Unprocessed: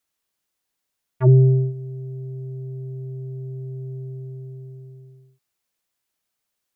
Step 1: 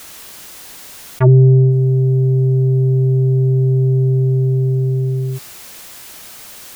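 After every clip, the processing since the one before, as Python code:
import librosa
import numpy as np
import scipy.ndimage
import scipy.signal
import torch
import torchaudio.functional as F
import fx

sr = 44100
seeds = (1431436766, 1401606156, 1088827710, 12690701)

y = fx.env_flatten(x, sr, amount_pct=70)
y = y * librosa.db_to_amplitude(3.5)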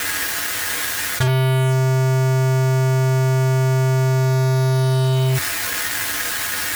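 y = fx.peak_eq(x, sr, hz=1700.0, db=14.5, octaves=0.79)
y = fx.fuzz(y, sr, gain_db=41.0, gate_db=-32.0)
y = fx.comb_fb(y, sr, f0_hz=97.0, decay_s=0.17, harmonics='odd', damping=0.0, mix_pct=80)
y = y * librosa.db_to_amplitude(7.0)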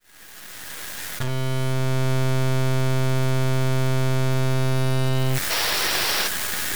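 y = fx.fade_in_head(x, sr, length_s=2.12)
y = np.maximum(y, 0.0)
y = fx.spec_paint(y, sr, seeds[0], shape='noise', start_s=5.5, length_s=0.78, low_hz=320.0, high_hz=5900.0, level_db=-25.0)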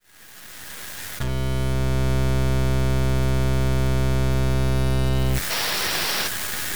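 y = fx.octave_divider(x, sr, octaves=1, level_db=0.0)
y = y * librosa.db_to_amplitude(-1.5)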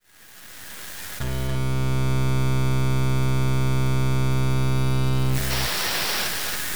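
y = x + 10.0 ** (-5.0 / 20.0) * np.pad(x, (int(282 * sr / 1000.0), 0))[:len(x)]
y = y * librosa.db_to_amplitude(-2.0)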